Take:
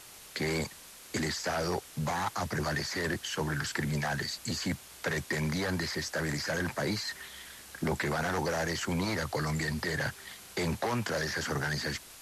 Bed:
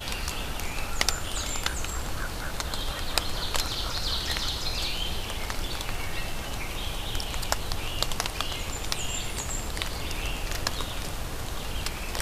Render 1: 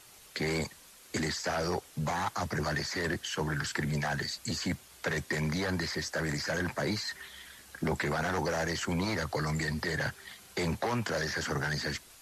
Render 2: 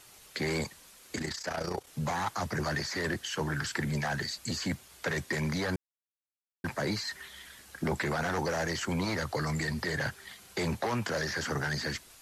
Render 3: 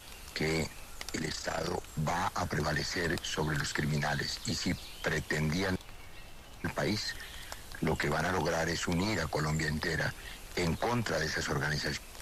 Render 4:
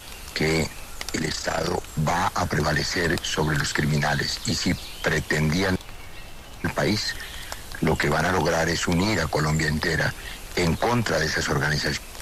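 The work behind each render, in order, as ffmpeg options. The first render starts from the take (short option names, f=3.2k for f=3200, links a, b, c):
-af "afftdn=nr=6:nf=-51"
-filter_complex "[0:a]asettb=1/sr,asplit=3[a][b][c];[a]atrim=end=1.154[d];[b]atrim=start=1.15:end=1.87,asetpts=PTS-STARTPTS,afade=t=in:d=0.004:c=qsin,afade=t=out:st=0.716:d=0.004:c=qsin,tremolo=f=30:d=0.71[e];[c]atrim=start=1.866[f];[d][e]acrossfade=d=0.004:c1=hsin:c2=qsin[g];[g][f]acrossfade=d=0.004:c1=qsin:c2=hsin,asplit=3[h][i][j];[h]atrim=end=5.76,asetpts=PTS-STARTPTS,afade=t=out:st=5.756:d=0.004:c=hsin[k];[i]atrim=start=5.76:end=6.64,asetpts=PTS-STARTPTS,volume=0[l];[j]atrim=start=6.64,asetpts=PTS-STARTPTS,afade=t=in:d=0.004:c=hsin[m];[k][l][m]concat=n=3:v=0:a=1"
-filter_complex "[1:a]volume=-17dB[a];[0:a][a]amix=inputs=2:normalize=0"
-af "volume=9dB"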